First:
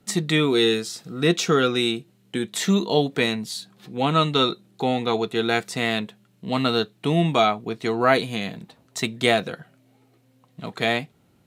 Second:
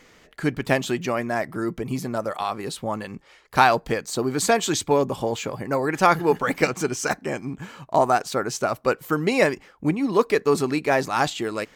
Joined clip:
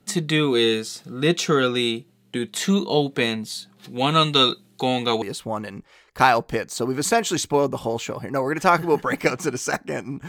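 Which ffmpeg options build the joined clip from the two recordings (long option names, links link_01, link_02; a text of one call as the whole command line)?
ffmpeg -i cue0.wav -i cue1.wav -filter_complex "[0:a]asettb=1/sr,asplit=3[link_01][link_02][link_03];[link_01]atrim=end=3.844[link_04];[link_02]atrim=start=3.84:end=5.22,asetpts=PTS-STARTPTS,afade=type=in:duration=0.004:curve=qsin,afade=type=out:start_time=1.376:duration=0.004:curve=qsin,highshelf=frequency=2300:gain=8[link_05];[link_03]atrim=start=5.216[link_06];[link_04][link_05]acrossfade=duration=0.004:curve1=hsin:curve2=qsin[link_07];[link_07][link_06]acrossfade=duration=0.004:curve1=qsin:curve2=hsin,apad=whole_dur=10.28,atrim=end=10.28,atrim=end=5.222[link_08];[1:a]atrim=start=2.588:end=7.65[link_09];[link_08][link_09]acrossfade=duration=0.004:curve1=hsin:curve2=hsin" out.wav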